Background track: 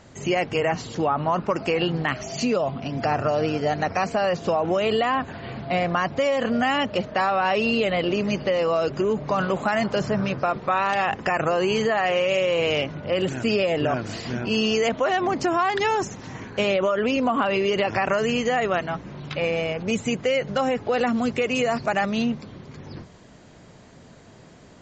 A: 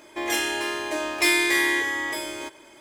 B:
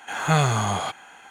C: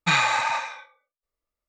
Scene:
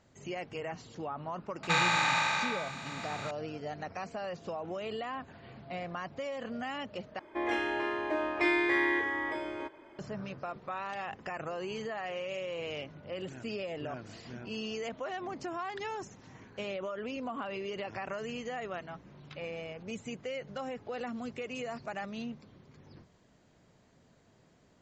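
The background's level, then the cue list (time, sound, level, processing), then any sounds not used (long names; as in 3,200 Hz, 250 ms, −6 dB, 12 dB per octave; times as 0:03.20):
background track −16 dB
0:01.63: mix in C −10.5 dB + compressor on every frequency bin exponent 0.2
0:07.19: overwrite with A −3 dB + low-pass filter 1,700 Hz
not used: B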